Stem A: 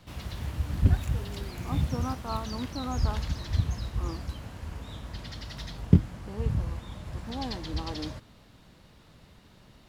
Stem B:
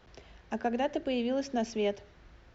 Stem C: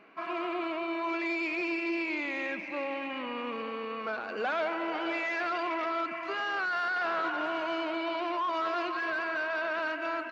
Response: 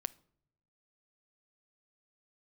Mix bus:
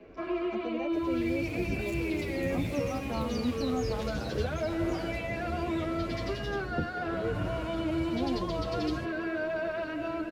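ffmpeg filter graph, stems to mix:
-filter_complex "[0:a]lowshelf=frequency=140:gain=-10,dynaudnorm=framelen=120:gausssize=7:maxgain=12dB,asoftclip=type=tanh:threshold=-12.5dB,adelay=850,volume=-8dB[link_01];[1:a]volume=-8.5dB[link_02];[2:a]volume=0dB[link_03];[link_01][link_02][link_03]amix=inputs=3:normalize=0,lowshelf=frequency=700:width_type=q:width=1.5:gain=11,acrossover=split=110|260|900[link_04][link_05][link_06][link_07];[link_04]acompressor=threshold=-36dB:ratio=4[link_08];[link_05]acompressor=threshold=-35dB:ratio=4[link_09];[link_06]acompressor=threshold=-32dB:ratio=4[link_10];[link_07]acompressor=threshold=-35dB:ratio=4[link_11];[link_08][link_09][link_10][link_11]amix=inputs=4:normalize=0,asplit=2[link_12][link_13];[link_13]adelay=9.2,afreqshift=0.85[link_14];[link_12][link_14]amix=inputs=2:normalize=1"

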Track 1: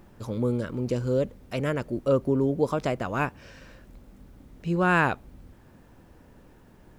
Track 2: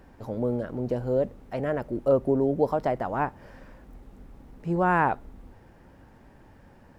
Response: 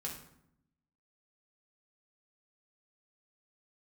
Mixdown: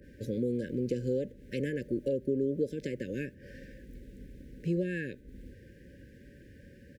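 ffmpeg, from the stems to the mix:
-filter_complex "[0:a]highpass=frequency=170:width=0.5412,highpass=frequency=170:width=1.3066,acompressor=threshold=-26dB:ratio=5,volume=-6dB[link_01];[1:a]acompressor=threshold=-34dB:ratio=4,adynamicequalizer=threshold=0.00282:dfrequency=1900:dqfactor=0.7:tfrequency=1900:tqfactor=0.7:attack=5:release=100:ratio=0.375:range=2.5:mode=cutabove:tftype=highshelf,adelay=2.3,volume=1dB,asplit=2[link_02][link_03];[link_03]apad=whole_len=307915[link_04];[link_01][link_04]sidechaingate=range=-33dB:threshold=-43dB:ratio=16:detection=peak[link_05];[link_05][link_02]amix=inputs=2:normalize=0,highpass=40,afftfilt=real='re*(1-between(b*sr/4096,590,1500))':imag='im*(1-between(b*sr/4096,590,1500))':win_size=4096:overlap=0.75"

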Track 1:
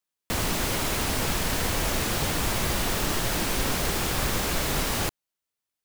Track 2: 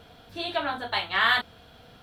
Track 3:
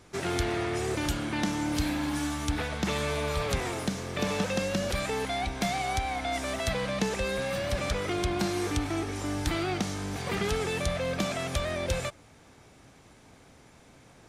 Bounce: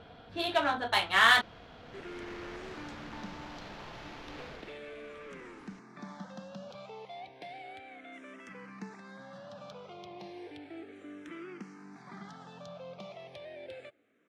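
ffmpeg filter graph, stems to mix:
ffmpeg -i stem1.wav -i stem2.wav -i stem3.wav -filter_complex "[0:a]acrossover=split=420|5400[link_01][link_02][link_03];[link_01]acompressor=threshold=-43dB:ratio=4[link_04];[link_02]acompressor=threshold=-43dB:ratio=4[link_05];[link_03]acompressor=threshold=-42dB:ratio=4[link_06];[link_04][link_05][link_06]amix=inputs=3:normalize=0,acrusher=samples=5:mix=1:aa=0.000001,adelay=700,volume=-6.5dB,afade=type=in:start_time=1.81:duration=0.52:silence=0.298538,afade=type=out:start_time=4.51:duration=0.27:silence=0.237137[link_07];[1:a]volume=0.5dB[link_08];[2:a]highpass=frequency=150:width=0.5412,highpass=frequency=150:width=1.3066,asplit=2[link_09][link_10];[link_10]afreqshift=-0.33[link_11];[link_09][link_11]amix=inputs=2:normalize=1,adelay=1800,volume=-11.5dB[link_12];[link_07][link_08][link_12]amix=inputs=3:normalize=0,adynamicsmooth=sensitivity=3.5:basefreq=3300,lowshelf=frequency=86:gain=-5.5" out.wav

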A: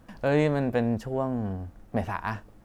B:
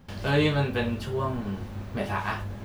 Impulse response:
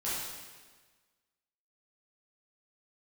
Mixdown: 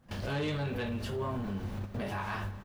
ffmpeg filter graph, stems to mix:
-filter_complex "[0:a]acompressor=threshold=-28dB:ratio=6,volume=-10.5dB,asplit=2[link_01][link_02];[1:a]adelay=26,volume=0.5dB,asplit=2[link_03][link_04];[link_04]volume=-23.5dB[link_05];[link_02]apad=whole_len=117697[link_06];[link_03][link_06]sidechaingate=range=-11dB:threshold=-57dB:ratio=16:detection=peak[link_07];[2:a]atrim=start_sample=2205[link_08];[link_05][link_08]afir=irnorm=-1:irlink=0[link_09];[link_01][link_07][link_09]amix=inputs=3:normalize=0,asoftclip=type=tanh:threshold=-19dB,alimiter=level_in=4dB:limit=-24dB:level=0:latency=1:release=131,volume=-4dB"

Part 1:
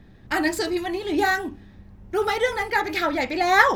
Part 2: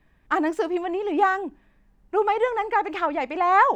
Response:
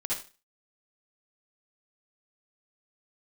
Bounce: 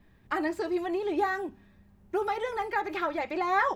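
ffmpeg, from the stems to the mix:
-filter_complex "[0:a]volume=-12.5dB[link_01];[1:a]highshelf=frequency=5200:gain=-8,acompressor=threshold=-27dB:ratio=2.5,aemphasis=mode=production:type=50kf,adelay=4.7,volume=-3dB[link_02];[link_01][link_02]amix=inputs=2:normalize=0,acrossover=split=3200[link_03][link_04];[link_04]acompressor=threshold=-51dB:ratio=4:attack=1:release=60[link_05];[link_03][link_05]amix=inputs=2:normalize=0"

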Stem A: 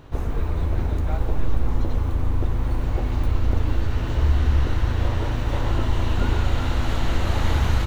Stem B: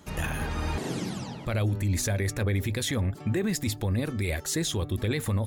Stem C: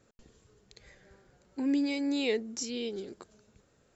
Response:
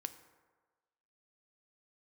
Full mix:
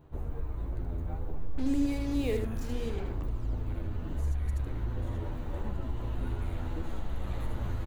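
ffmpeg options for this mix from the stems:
-filter_complex "[0:a]asplit=2[link_01][link_02];[link_02]adelay=10,afreqshift=-0.74[link_03];[link_01][link_03]amix=inputs=2:normalize=1,volume=-7dB[link_04];[1:a]highpass=180,acrossover=split=1300[link_05][link_06];[link_05]aeval=exprs='val(0)*(1-1/2+1/2*cos(2*PI*1.1*n/s))':channel_layout=same[link_07];[link_06]aeval=exprs='val(0)*(1-1/2-1/2*cos(2*PI*1.1*n/s))':channel_layout=same[link_08];[link_07][link_08]amix=inputs=2:normalize=0,adelay=2200,volume=-11dB,asplit=2[link_09][link_10];[link_10]volume=-11dB[link_11];[2:a]lowpass=frequency=1200:poles=1,acrusher=bits=6:mix=0:aa=0.5,volume=-2dB,asplit=2[link_12][link_13];[link_13]volume=-6dB[link_14];[link_04][link_09]amix=inputs=2:normalize=0,equalizer=frequency=4000:width=0.32:gain=-9.5,acompressor=threshold=-29dB:ratio=2,volume=0dB[link_15];[link_11][link_14]amix=inputs=2:normalize=0,aecho=0:1:77:1[link_16];[link_12][link_15][link_16]amix=inputs=3:normalize=0,equalizer=frequency=5400:width=6.4:gain=-6.5"

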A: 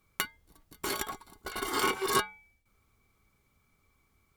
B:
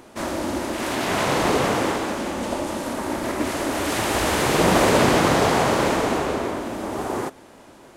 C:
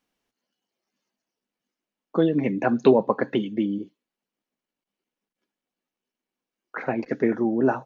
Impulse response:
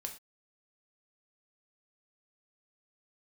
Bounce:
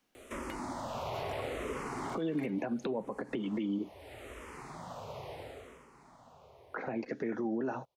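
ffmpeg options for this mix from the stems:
-filter_complex "[0:a]lowpass=frequency=1700:poles=1,acompressor=threshold=-34dB:ratio=6,asplit=2[link_01][link_02];[link_02]afreqshift=0.48[link_03];[link_01][link_03]amix=inputs=2:normalize=1,adelay=300,volume=-4.5dB[link_04];[1:a]equalizer=frequency=200:width_type=o:width=0.33:gain=-11,equalizer=frequency=315:width_type=o:width=0.33:gain=-11,equalizer=frequency=1600:width_type=o:width=0.33:gain=-8,acrossover=split=220|2700[link_05][link_06][link_07];[link_05]acompressor=threshold=-41dB:ratio=4[link_08];[link_06]acompressor=threshold=-34dB:ratio=4[link_09];[link_07]acompressor=threshold=-53dB:ratio=4[link_10];[link_08][link_09][link_10]amix=inputs=3:normalize=0,asplit=2[link_11][link_12];[link_12]afreqshift=-0.74[link_13];[link_11][link_13]amix=inputs=2:normalize=1,adelay=150,volume=-0.5dB,afade=type=out:start_time=3.31:duration=0.44:silence=0.354813,afade=type=out:start_time=5.39:duration=0.49:silence=0.266073[link_14];[2:a]alimiter=limit=-14.5dB:level=0:latency=1:release=116,volume=2dB,asplit=3[link_15][link_16][link_17];[link_16]volume=-20.5dB[link_18];[link_17]apad=whole_len=357739[link_19];[link_14][link_19]sidechaincompress=threshold=-32dB:ratio=8:attack=31:release=603[link_20];[3:a]atrim=start_sample=2205[link_21];[link_18][link_21]afir=irnorm=-1:irlink=0[link_22];[link_04][link_20][link_15][link_22]amix=inputs=4:normalize=0,acrossover=split=190|980|2700[link_23][link_24][link_25][link_26];[link_23]acompressor=threshold=-43dB:ratio=4[link_27];[link_24]acompressor=threshold=-28dB:ratio=4[link_28];[link_25]acompressor=threshold=-44dB:ratio=4[link_29];[link_26]acompressor=threshold=-51dB:ratio=4[link_30];[link_27][link_28][link_29][link_30]amix=inputs=4:normalize=0,alimiter=level_in=2dB:limit=-24dB:level=0:latency=1:release=140,volume=-2dB"

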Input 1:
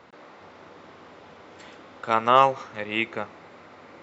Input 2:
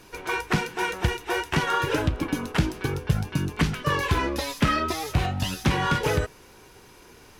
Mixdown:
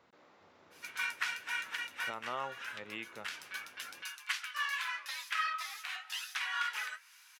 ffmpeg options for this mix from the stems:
ffmpeg -i stem1.wav -i stem2.wav -filter_complex "[0:a]highshelf=frequency=4500:gain=7,alimiter=limit=-12dB:level=0:latency=1:release=402,volume=-15.5dB,asplit=2[link_01][link_02];[1:a]highpass=frequency=1400:width=0.5412,highpass=frequency=1400:width=1.3066,flanger=delay=5.3:depth=8.8:regen=-54:speed=0.89:shape=triangular,adynamicequalizer=threshold=0.00355:dfrequency=3000:dqfactor=0.7:tfrequency=3000:tqfactor=0.7:attack=5:release=100:ratio=0.375:range=4:mode=cutabove:tftype=highshelf,adelay=700,volume=0dB[link_03];[link_02]apad=whole_len=356781[link_04];[link_03][link_04]sidechaincompress=threshold=-49dB:ratio=8:attack=38:release=316[link_05];[link_01][link_05]amix=inputs=2:normalize=0" out.wav

